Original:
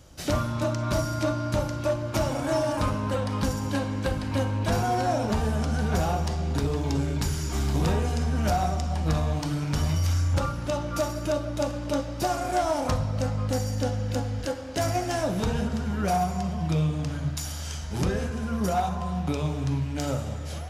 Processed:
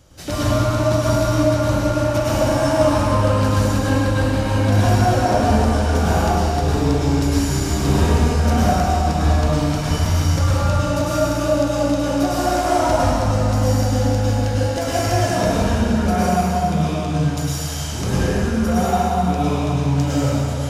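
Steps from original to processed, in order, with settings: plate-style reverb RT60 2.6 s, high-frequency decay 0.8×, pre-delay 90 ms, DRR -8.5 dB

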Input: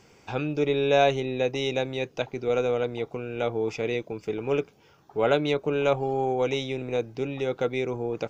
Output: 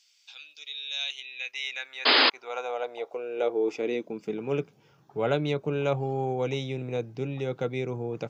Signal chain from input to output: high-pass sweep 3.8 kHz -> 130 Hz, 0.91–4.75 s; painted sound noise, 2.05–2.30 s, 240–5100 Hz -15 dBFS; trim -4.5 dB

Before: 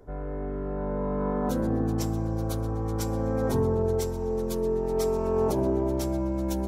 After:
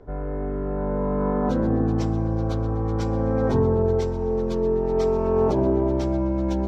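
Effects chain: distance through air 170 m; trim +5 dB

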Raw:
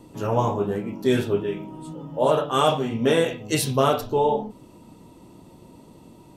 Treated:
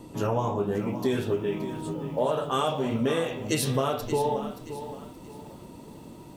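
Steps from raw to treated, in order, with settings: compression 5:1, threshold -26 dBFS, peak gain reduction 11 dB; bit-crushed delay 575 ms, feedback 35%, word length 9-bit, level -11.5 dB; trim +2.5 dB

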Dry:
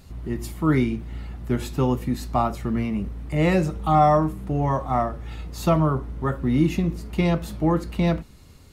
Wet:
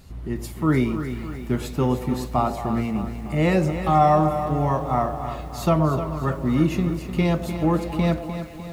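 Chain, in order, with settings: repeats whose band climbs or falls 112 ms, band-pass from 530 Hz, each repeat 0.7 oct, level -8 dB; bit-crushed delay 302 ms, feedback 55%, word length 8-bit, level -10 dB

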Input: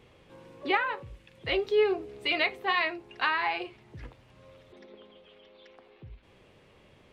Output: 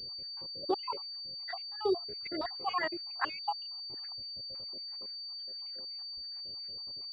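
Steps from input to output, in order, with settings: random holes in the spectrogram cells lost 76%; class-D stage that switches slowly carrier 4.6 kHz

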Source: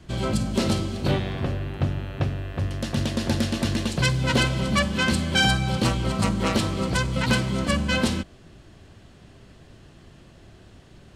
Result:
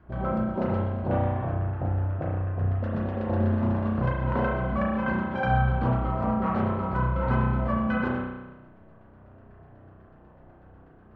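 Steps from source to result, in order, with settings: wow and flutter 19 cents; LFO low-pass saw down 8.1 Hz 610–1500 Hz; spring tank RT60 1.1 s, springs 32 ms, chirp 75 ms, DRR -3.5 dB; trim -8.5 dB

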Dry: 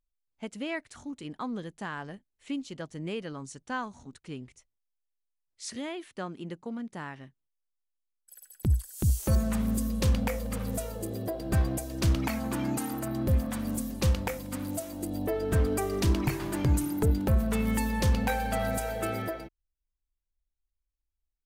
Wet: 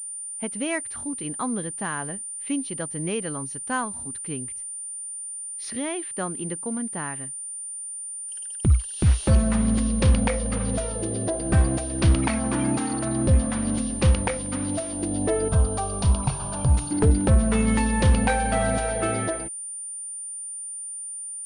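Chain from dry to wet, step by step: 15.48–16.91 s: static phaser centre 820 Hz, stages 4; class-D stage that switches slowly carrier 9.2 kHz; trim +6.5 dB

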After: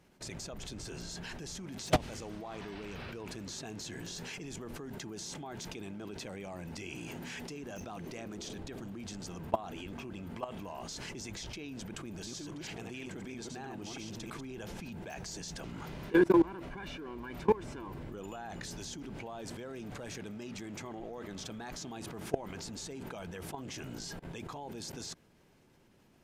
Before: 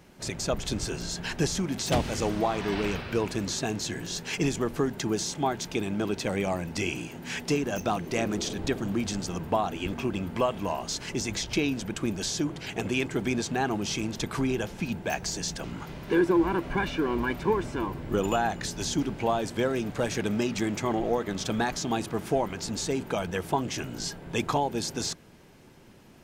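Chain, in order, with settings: 12.02–14.45 s: chunks repeated in reverse 163 ms, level -3 dB; level held to a coarse grid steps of 22 dB; trim +1 dB; AC-3 320 kbps 32 kHz

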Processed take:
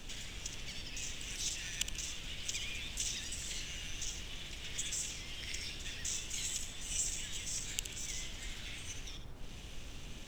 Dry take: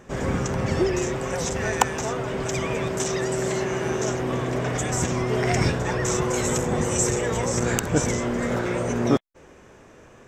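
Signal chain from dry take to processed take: compression 10:1, threshold -36 dBFS, peak gain reduction 23.5 dB; crossover distortion -57 dBFS; ladder high-pass 2.7 kHz, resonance 50%; added noise brown -60 dBFS; on a send: flutter echo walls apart 11.9 m, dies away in 0.46 s; on the sum: trim +14.5 dB

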